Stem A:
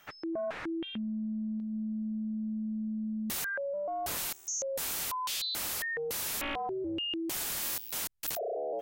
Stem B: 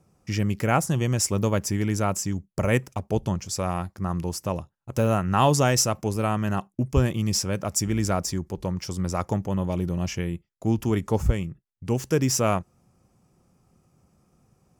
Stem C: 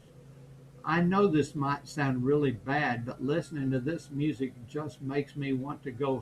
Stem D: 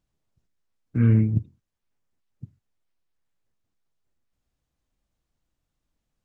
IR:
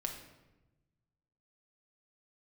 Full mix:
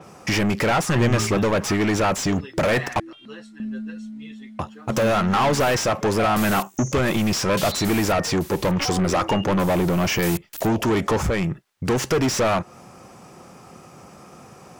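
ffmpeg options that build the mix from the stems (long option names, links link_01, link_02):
-filter_complex "[0:a]dynaudnorm=framelen=330:gausssize=3:maxgain=11.5dB,aeval=exprs='val(0)*pow(10,-19*if(lt(mod(0.77*n/s,1),2*abs(0.77)/1000),1-mod(0.77*n/s,1)/(2*abs(0.77)/1000),(mod(0.77*n/s,1)-2*abs(0.77)/1000)/(1-2*abs(0.77)/1000))/20)':channel_layout=same,adelay=2300,volume=-5dB[link_01];[1:a]acompressor=threshold=-26dB:ratio=3,asplit=2[link_02][link_03];[link_03]highpass=frequency=720:poles=1,volume=33dB,asoftclip=type=tanh:threshold=-12dB[link_04];[link_02][link_04]amix=inputs=2:normalize=0,lowpass=frequency=3200:poles=1,volume=-6dB,adynamicequalizer=threshold=0.0112:dfrequency=5600:dqfactor=0.7:tfrequency=5600:tqfactor=0.7:attack=5:release=100:ratio=0.375:range=2.5:mode=cutabove:tftype=highshelf,volume=0.5dB,asplit=3[link_05][link_06][link_07];[link_05]atrim=end=3,asetpts=PTS-STARTPTS,afade=type=out:start_time=2.996:duration=0.004:curve=hsin[link_08];[link_06]atrim=start=3:end=4.59,asetpts=PTS-STARTPTS,volume=0[link_09];[link_07]atrim=start=4.59,asetpts=PTS-STARTPTS,afade=type=in:duration=0.004:curve=hsin[link_10];[link_08][link_09][link_10]concat=n=3:v=0:a=1[link_11];[2:a]bandpass=frequency=3000:width_type=q:width=0.6:csg=0,asplit=2[link_12][link_13];[link_13]adelay=7.8,afreqshift=-0.77[link_14];[link_12][link_14]amix=inputs=2:normalize=1,volume=2.5dB[link_15];[3:a]volume=-6dB[link_16];[link_01][link_11][link_15][link_16]amix=inputs=4:normalize=0"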